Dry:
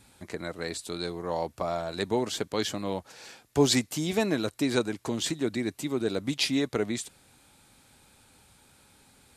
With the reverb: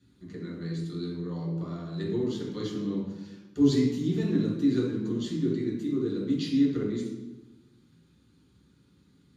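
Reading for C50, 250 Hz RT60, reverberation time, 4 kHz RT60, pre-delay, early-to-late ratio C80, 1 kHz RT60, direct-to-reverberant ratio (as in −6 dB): 1.0 dB, 1.3 s, 1.1 s, 0.80 s, 3 ms, 5.0 dB, 1.0 s, −6.5 dB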